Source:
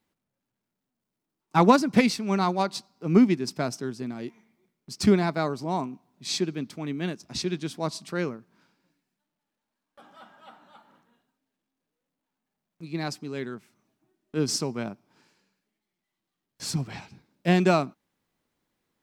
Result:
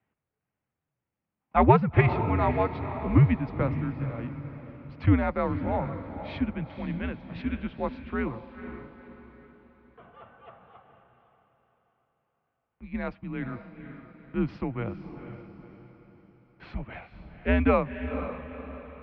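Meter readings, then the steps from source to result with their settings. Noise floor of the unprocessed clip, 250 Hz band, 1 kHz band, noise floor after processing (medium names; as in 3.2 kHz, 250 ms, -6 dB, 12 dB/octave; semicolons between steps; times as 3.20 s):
-85 dBFS, -3.0 dB, -0.5 dB, under -85 dBFS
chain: echo that smears into a reverb 488 ms, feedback 43%, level -10 dB; mistuned SSB -110 Hz 190–2800 Hz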